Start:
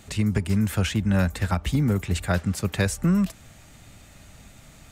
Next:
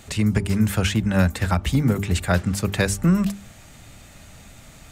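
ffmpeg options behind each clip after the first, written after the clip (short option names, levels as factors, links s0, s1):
-af "bandreject=f=50:t=h:w=6,bandreject=f=100:t=h:w=6,bandreject=f=150:t=h:w=6,bandreject=f=200:t=h:w=6,bandreject=f=250:t=h:w=6,bandreject=f=300:t=h:w=6,bandreject=f=350:t=h:w=6,bandreject=f=400:t=h:w=6,volume=1.58"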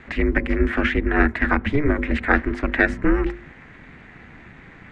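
-af "aeval=exprs='val(0)*sin(2*PI*150*n/s)':c=same,lowpass=f=1900:t=q:w=3.8,volume=1.33"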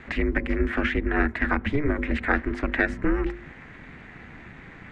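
-af "acompressor=threshold=0.0447:ratio=1.5"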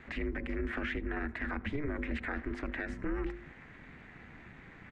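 -af "alimiter=limit=0.133:level=0:latency=1:release=40,aecho=1:1:80:0.0708,volume=0.398"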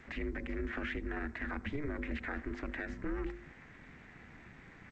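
-af "volume=0.75" -ar 16000 -c:a g722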